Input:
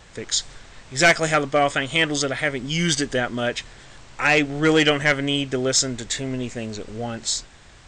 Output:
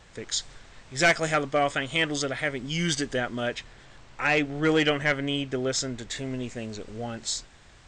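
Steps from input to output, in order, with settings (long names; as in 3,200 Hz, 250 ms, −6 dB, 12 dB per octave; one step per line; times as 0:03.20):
high-shelf EQ 6,100 Hz −3 dB, from 0:03.55 −9.5 dB, from 0:06.16 −2 dB
level −5 dB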